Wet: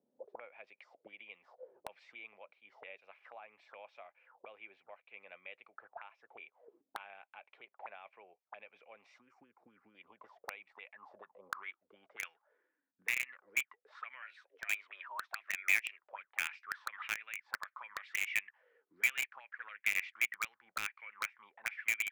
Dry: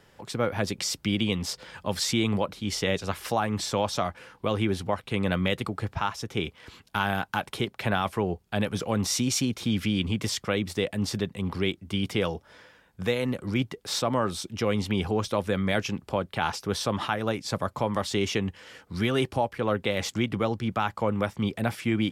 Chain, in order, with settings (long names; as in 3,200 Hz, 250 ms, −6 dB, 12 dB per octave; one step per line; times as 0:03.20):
band-pass filter sweep 620 Hz → 1,800 Hz, 0:10.11–0:12.66
0:09.18–0:09.95: phaser swept by the level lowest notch 410 Hz, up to 1,600 Hz, full sweep at −28.5 dBFS
0:14.22–0:16.03: frequency shifter +180 Hz
envelope filter 220–2,400 Hz, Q 9.1, up, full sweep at −36.5 dBFS
in parallel at −10 dB: log-companded quantiser 2 bits
on the sum: level +6.5 dB